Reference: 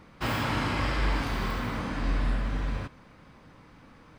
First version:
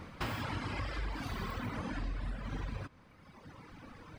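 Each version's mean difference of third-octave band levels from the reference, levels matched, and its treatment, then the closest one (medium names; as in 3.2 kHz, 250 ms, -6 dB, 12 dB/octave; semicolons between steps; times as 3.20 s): 4.0 dB: peaking EQ 88 Hz +6.5 dB 0.38 oct; reverb removal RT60 1.6 s; compression 6:1, threshold -40 dBFS, peak gain reduction 15 dB; trim +4.5 dB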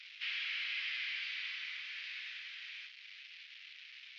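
23.5 dB: one-bit delta coder 32 kbps, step -39 dBFS; steep high-pass 2.3 kHz 36 dB/octave; distance through air 370 m; trim +8.5 dB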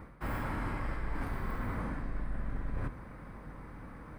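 6.0 dB: octave divider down 2 oct, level +2 dB; high-order bell 4.3 kHz -12.5 dB; reverse; compression 6:1, threshold -37 dBFS, peak gain reduction 17.5 dB; reverse; trim +4 dB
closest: first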